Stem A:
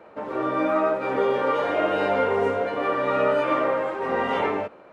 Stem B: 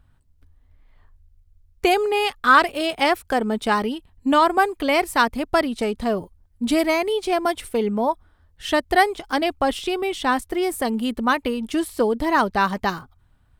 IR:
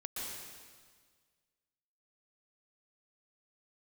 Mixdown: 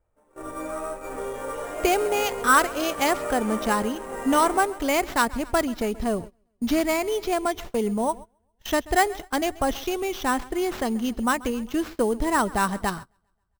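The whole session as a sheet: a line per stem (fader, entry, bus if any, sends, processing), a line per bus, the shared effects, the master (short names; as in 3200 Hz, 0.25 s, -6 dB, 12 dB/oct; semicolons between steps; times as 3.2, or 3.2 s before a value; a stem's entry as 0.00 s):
-10.0 dB, 0.00 s, no send, echo send -11.5 dB, dry
-4.0 dB, 0.00 s, no send, echo send -20.5 dB, low shelf 110 Hz +10.5 dB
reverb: off
echo: feedback echo 0.134 s, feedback 60%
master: gate -35 dBFS, range -21 dB; sample-rate reducer 9300 Hz, jitter 0%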